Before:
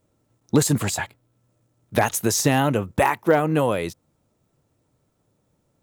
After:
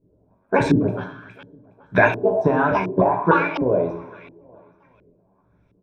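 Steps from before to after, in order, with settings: trilling pitch shifter +11 st, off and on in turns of 0.301 s; ripple EQ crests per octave 1.6, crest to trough 12 dB; in parallel at +1 dB: compressor, threshold -28 dBFS, peak gain reduction 15 dB; on the sum: feedback echo 0.415 s, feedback 45%, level -23 dB; harmonic-percussive split harmonic -9 dB; de-hum 116.6 Hz, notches 31; on a send at -4 dB: reverb RT60 0.55 s, pre-delay 3 ms; on the sum: LFO low-pass saw up 1.4 Hz 330–2600 Hz; gain -1 dB

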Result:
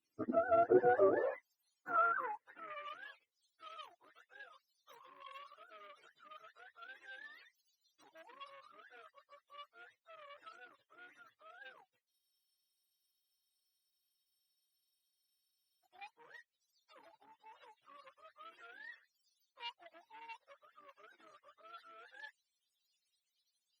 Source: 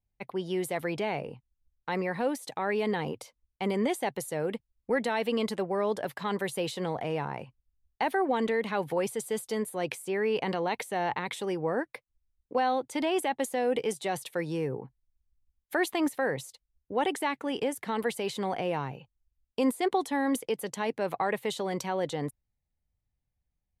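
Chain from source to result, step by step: spectrum mirrored in octaves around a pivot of 500 Hz; spectral repair 5.06–5.3, 710–2900 Hz both; soft clip -21.5 dBFS, distortion -19 dB; high-pass sweep 270 Hz -> 3500 Hz, 0.51–3.15; spectral freeze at 12.12, 3.73 s; gain +1 dB; Opus 64 kbps 48000 Hz

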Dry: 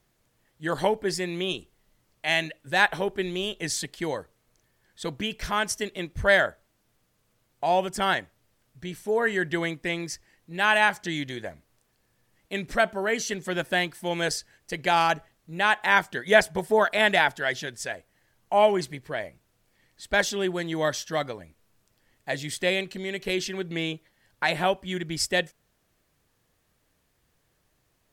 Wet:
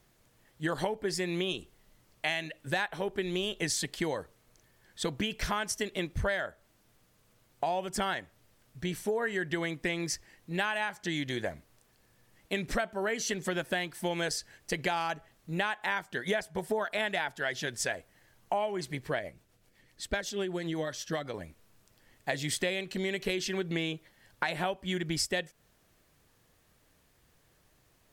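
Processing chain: compressor 16:1, threshold -31 dBFS, peak gain reduction 20 dB; 19.19–21.34 rotary speaker horn 8 Hz; gain +3.5 dB

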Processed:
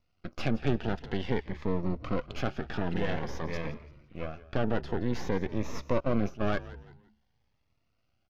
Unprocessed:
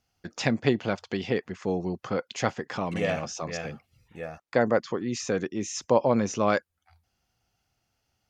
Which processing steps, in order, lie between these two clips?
high shelf 4800 Hz +9.5 dB; half-wave rectifier; in parallel at -1 dB: limiter -22 dBFS, peak gain reduction 16.5 dB; on the sum: air absorption 310 m; soft clip -13.5 dBFS, distortion -15 dB; on a send: frequency-shifting echo 0.17 s, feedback 33%, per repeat -72 Hz, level -16.5 dB; 6–6.47 on the sum: gate -26 dBFS, range -14 dB; cascading phaser rising 0.51 Hz

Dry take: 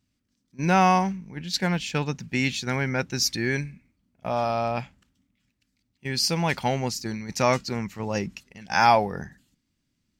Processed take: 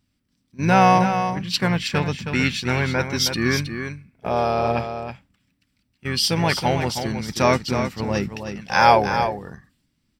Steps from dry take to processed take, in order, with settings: notch 6600 Hz, Q 5.2; harmoniser -7 st -9 dB; echo 0.318 s -8 dB; gain +3.5 dB

